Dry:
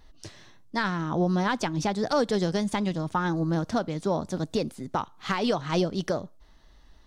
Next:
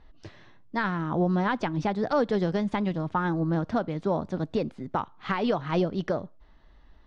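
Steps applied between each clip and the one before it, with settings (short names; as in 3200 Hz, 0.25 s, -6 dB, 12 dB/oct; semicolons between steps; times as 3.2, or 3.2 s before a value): LPF 2700 Hz 12 dB/oct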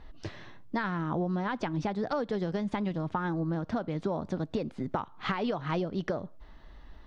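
compressor 6:1, threshold -34 dBFS, peak gain reduction 13.5 dB; gain +5.5 dB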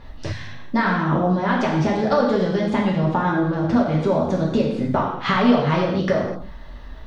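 non-linear reverb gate 0.28 s falling, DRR -3.5 dB; spectral repair 0.34–0.56, 210–1400 Hz after; gain +7.5 dB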